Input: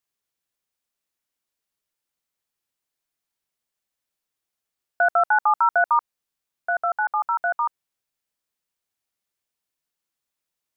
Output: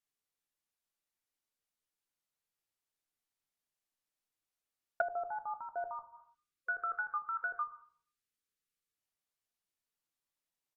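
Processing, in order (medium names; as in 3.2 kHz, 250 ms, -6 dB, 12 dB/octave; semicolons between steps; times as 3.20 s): doubling 13 ms -13.5 dB; simulated room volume 61 m³, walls mixed, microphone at 0.33 m; time-frequency box 6.34–8.94 s, 520–1100 Hz -18 dB; low-pass that closes with the level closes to 410 Hz, closed at -19 dBFS; trim -8 dB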